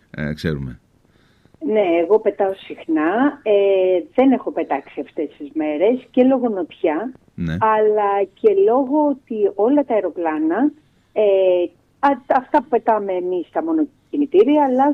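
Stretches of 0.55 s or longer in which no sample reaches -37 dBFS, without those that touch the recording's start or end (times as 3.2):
0.76–1.45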